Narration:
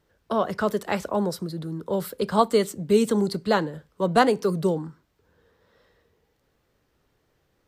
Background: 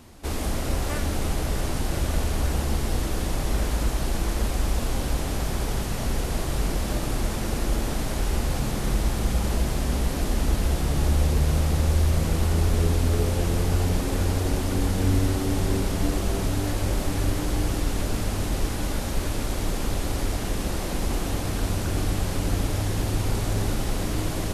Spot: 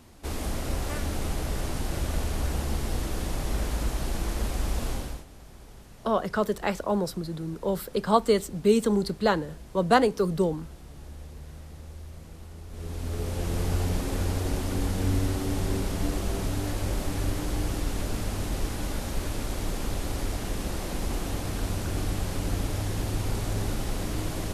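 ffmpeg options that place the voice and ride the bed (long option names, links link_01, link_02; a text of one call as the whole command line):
ffmpeg -i stem1.wav -i stem2.wav -filter_complex "[0:a]adelay=5750,volume=-1.5dB[link_01];[1:a]volume=13.5dB,afade=type=out:start_time=4.9:duration=0.35:silence=0.133352,afade=type=in:start_time=12.68:duration=0.98:silence=0.133352[link_02];[link_01][link_02]amix=inputs=2:normalize=0" out.wav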